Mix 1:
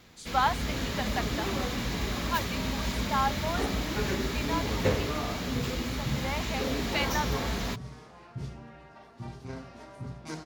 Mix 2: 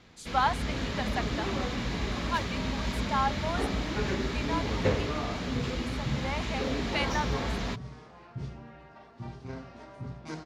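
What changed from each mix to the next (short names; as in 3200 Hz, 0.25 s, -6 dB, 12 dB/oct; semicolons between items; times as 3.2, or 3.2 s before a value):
speech: remove LPF 5200 Hz 12 dB/oct; master: add air absorption 78 m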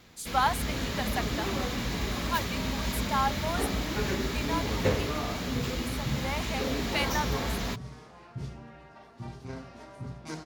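master: remove air absorption 78 m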